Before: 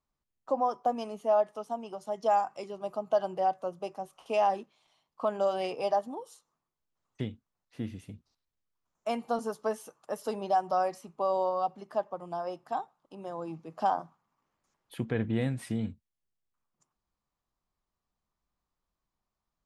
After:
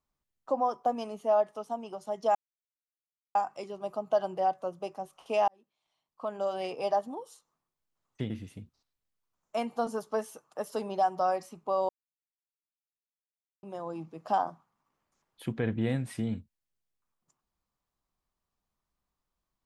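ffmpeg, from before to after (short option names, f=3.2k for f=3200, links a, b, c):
-filter_complex "[0:a]asplit=6[a][b][c][d][e][f];[a]atrim=end=2.35,asetpts=PTS-STARTPTS,afade=t=out:st=2.346:d=0.004:c=hsin,apad=pad_dur=1[g];[b]atrim=start=2.35:end=4.48,asetpts=PTS-STARTPTS,afade=t=in:d=0.004:c=hsin,afade=t=out:st=2.126:d=0.004:c=hsin[h];[c]atrim=start=4.48:end=7.302,asetpts=PTS-STARTPTS,afade=t=in:d=1.48[i];[d]atrim=start=7.818:end=11.41,asetpts=PTS-STARTPTS,afade=t=out:st=3.588:d=0.004:c=hsin[j];[e]atrim=start=11.41:end=13.15,asetpts=PTS-STARTPTS,volume=0[k];[f]atrim=start=13.15,asetpts=PTS-STARTPTS,afade=t=in:d=0.004:c=hsin[l];[g][h][i]concat=n=3:v=0:a=1[m];[j][k][l]concat=n=3:v=0:a=1[n];[m][n]acrossfade=d=0.004:c1=hsin:c2=hsin"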